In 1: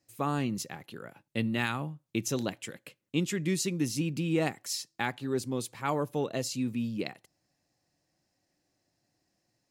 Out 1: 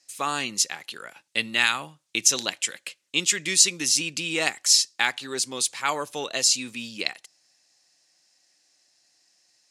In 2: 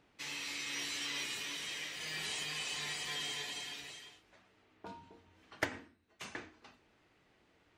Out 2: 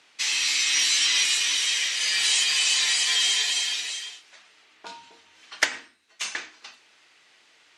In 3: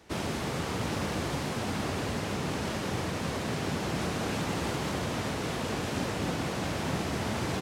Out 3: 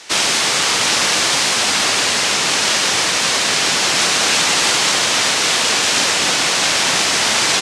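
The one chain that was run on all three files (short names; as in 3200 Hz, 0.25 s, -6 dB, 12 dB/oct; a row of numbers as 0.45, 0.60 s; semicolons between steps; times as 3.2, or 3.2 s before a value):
weighting filter ITU-R 468; normalise peaks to -2 dBFS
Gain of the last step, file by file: +5.5, +8.5, +15.0 dB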